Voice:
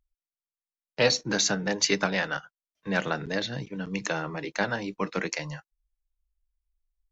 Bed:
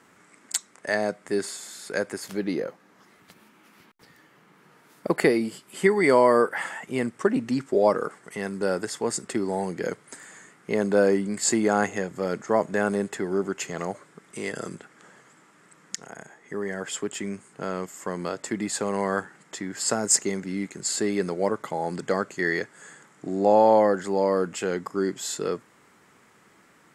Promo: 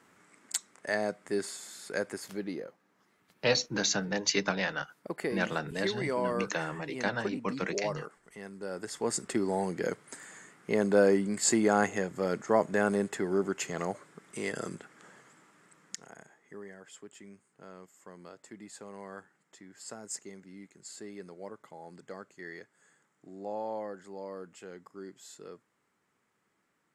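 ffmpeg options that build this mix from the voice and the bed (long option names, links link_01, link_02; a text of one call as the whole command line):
ffmpeg -i stem1.wav -i stem2.wav -filter_complex "[0:a]adelay=2450,volume=-4dB[link_01];[1:a]volume=5dB,afade=type=out:start_time=2.15:duration=0.58:silence=0.398107,afade=type=in:start_time=8.7:duration=0.46:silence=0.298538,afade=type=out:start_time=15.15:duration=1.65:silence=0.158489[link_02];[link_01][link_02]amix=inputs=2:normalize=0" out.wav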